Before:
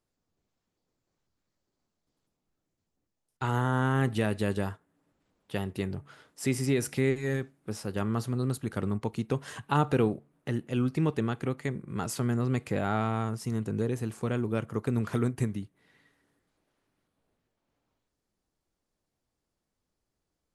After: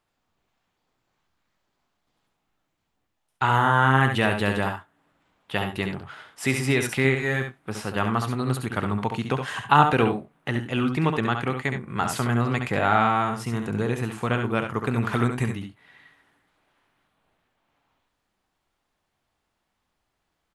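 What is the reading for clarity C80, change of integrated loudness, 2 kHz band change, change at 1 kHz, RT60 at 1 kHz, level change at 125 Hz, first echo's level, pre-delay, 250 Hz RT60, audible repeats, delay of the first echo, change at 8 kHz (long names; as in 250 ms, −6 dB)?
no reverb audible, +6.5 dB, +12.5 dB, +12.0 dB, no reverb audible, +4.0 dB, −6.5 dB, no reverb audible, no reverb audible, 1, 68 ms, +3.5 dB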